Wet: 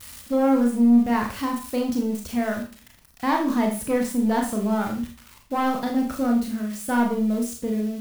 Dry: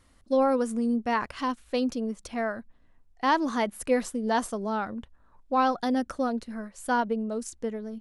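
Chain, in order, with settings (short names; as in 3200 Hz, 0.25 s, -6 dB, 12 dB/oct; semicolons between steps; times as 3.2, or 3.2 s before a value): switching spikes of -28.5 dBFS; HPF 55 Hz; tone controls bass +12 dB, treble -6 dB; soft clip -17.5 dBFS, distortion -17 dB; Schroeder reverb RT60 0.38 s, combs from 26 ms, DRR 1 dB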